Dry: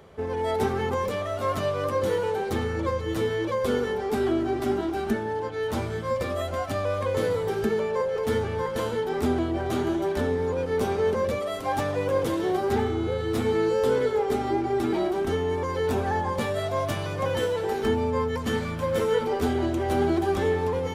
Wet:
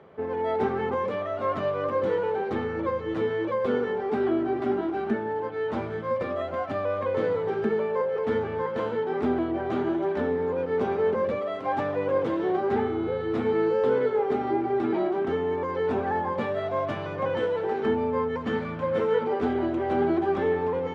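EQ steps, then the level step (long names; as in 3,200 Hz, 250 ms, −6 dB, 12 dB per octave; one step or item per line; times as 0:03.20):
band-pass filter 150–2,200 Hz
0.0 dB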